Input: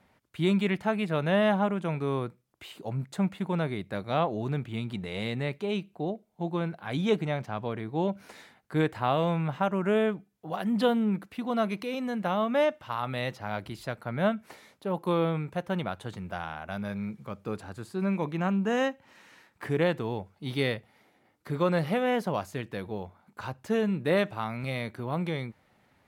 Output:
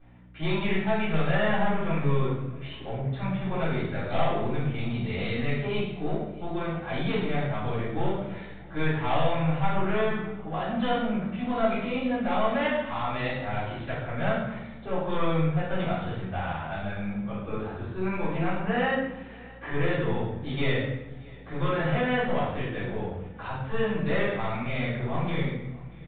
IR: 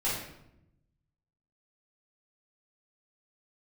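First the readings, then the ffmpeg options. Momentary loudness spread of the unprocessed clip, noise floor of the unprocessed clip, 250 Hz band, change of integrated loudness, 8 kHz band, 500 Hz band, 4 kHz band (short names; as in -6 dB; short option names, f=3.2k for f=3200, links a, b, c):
12 LU, -67 dBFS, 0.0 dB, +1.0 dB, n/a, 0.0 dB, +1.0 dB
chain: -filter_complex "[0:a]bandreject=f=60:t=h:w=6,bandreject=f=120:t=h:w=6,bandreject=f=180:t=h:w=6,acrossover=split=940[a][b];[a]asoftclip=type=tanh:threshold=-30dB[c];[c][b]amix=inputs=2:normalize=0,aeval=exprs='val(0)+0.002*(sin(2*PI*60*n/s)+sin(2*PI*2*60*n/s)/2+sin(2*PI*3*60*n/s)/3+sin(2*PI*4*60*n/s)/4+sin(2*PI*5*60*n/s)/5)':c=same,aresample=11025,asoftclip=type=hard:threshold=-25dB,aresample=44100,flanger=delay=5.4:depth=2.1:regen=89:speed=0.7:shape=triangular,aecho=1:1:635|1270|1905:0.0708|0.0311|0.0137[d];[1:a]atrim=start_sample=2205,asetrate=37926,aresample=44100[e];[d][e]afir=irnorm=-1:irlink=0,aresample=8000,aresample=44100"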